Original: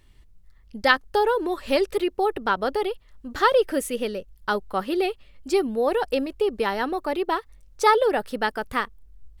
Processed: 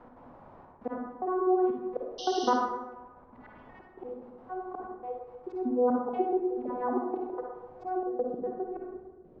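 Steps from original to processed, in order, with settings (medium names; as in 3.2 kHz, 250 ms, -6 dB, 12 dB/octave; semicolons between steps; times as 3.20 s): vocoder on a broken chord bare fifth, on B3, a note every 403 ms; 2.53–3.80 s: Chebyshev band-stop 160–2000 Hz, order 4; peak limiter -16.5 dBFS, peak gain reduction 8.5 dB; slow attack 491 ms; 5.90–7.06 s: phase dispersion lows, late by 78 ms, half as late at 680 Hz; added noise pink -65 dBFS; trance gate "x.xxxxxx..xx." 185 bpm -24 dB; low-pass sweep 910 Hz -> 430 Hz, 7.59–8.38 s; 2.18–2.50 s: painted sound noise 2.8–6.2 kHz -38 dBFS; reverberation RT60 0.95 s, pre-delay 42 ms, DRR 1 dB; three bands compressed up and down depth 40%; trim +1.5 dB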